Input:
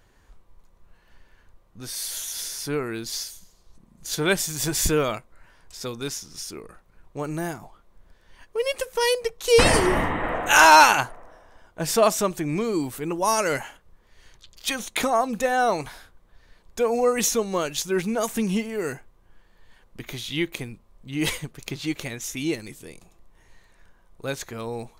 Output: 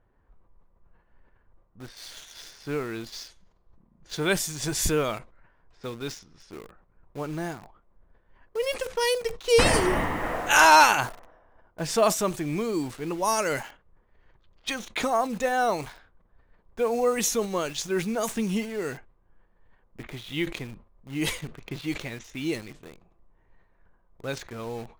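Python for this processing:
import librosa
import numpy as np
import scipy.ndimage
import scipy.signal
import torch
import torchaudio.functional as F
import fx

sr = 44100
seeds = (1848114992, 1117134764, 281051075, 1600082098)

p1 = fx.env_lowpass(x, sr, base_hz=1300.0, full_db=-20.5)
p2 = fx.quant_dither(p1, sr, seeds[0], bits=6, dither='none')
p3 = p1 + F.gain(torch.from_numpy(p2), -4.5).numpy()
p4 = fx.sustainer(p3, sr, db_per_s=150.0)
y = F.gain(torch.from_numpy(p4), -7.0).numpy()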